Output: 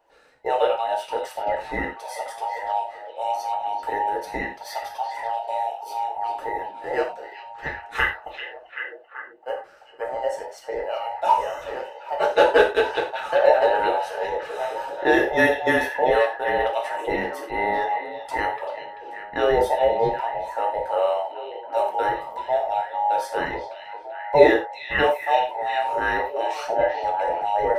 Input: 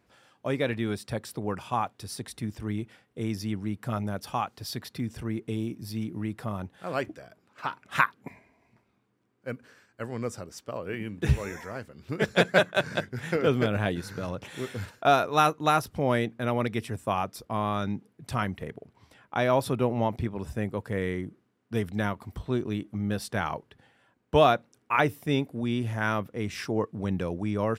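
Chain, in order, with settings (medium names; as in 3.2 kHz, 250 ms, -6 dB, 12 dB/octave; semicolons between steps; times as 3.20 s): every band turned upside down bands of 1 kHz; ten-band graphic EQ 125 Hz -4 dB, 250 Hz -3 dB, 500 Hz +11 dB, 1 kHz +6 dB, 2 kHz +3 dB; on a send: repeats whose band climbs or falls 388 ms, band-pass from 3.2 kHz, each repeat -0.7 oct, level -5.5 dB; on the sum: gated-style reverb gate 130 ms falling, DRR -0.5 dB; trim -5.5 dB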